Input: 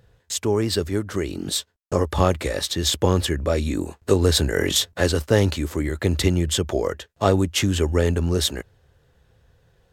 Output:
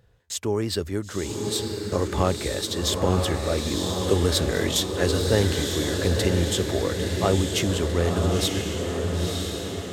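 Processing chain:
feedback delay with all-pass diffusion 979 ms, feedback 56%, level −3 dB
level −4 dB

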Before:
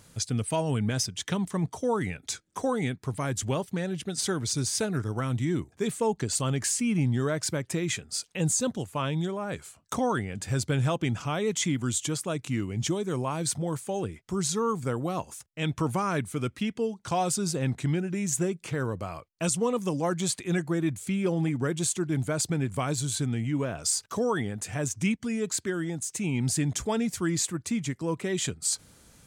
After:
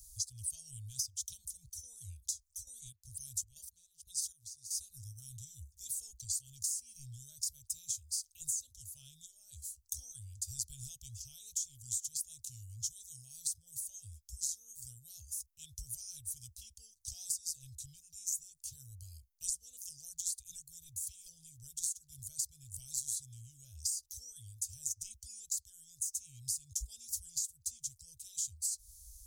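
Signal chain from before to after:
inverse Chebyshev band-stop filter 180–2,100 Hz, stop band 60 dB
parametric band 8,100 Hz −8 dB 0.64 octaves
downward compressor 12 to 1, threshold −42 dBFS, peak gain reduction 13 dB
0:02.62–0:04.79: gate pattern "xx...xx.xxx.x..." 118 BPM −12 dB
level +9 dB

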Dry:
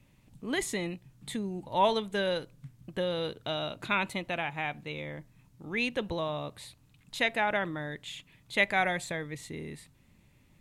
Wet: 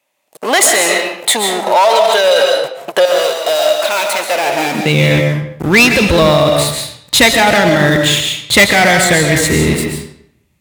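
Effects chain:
high-shelf EQ 4,400 Hz +6.5 dB
leveller curve on the samples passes 5
0:03.05–0:04.74: gain into a clipping stage and back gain 25.5 dB
high-pass filter sweep 650 Hz → 62 Hz, 0:04.28–0:05.38
comb and all-pass reverb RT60 0.68 s, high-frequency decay 0.85×, pre-delay 95 ms, DRR 3 dB
boost into a limiter +10 dB
level −1 dB

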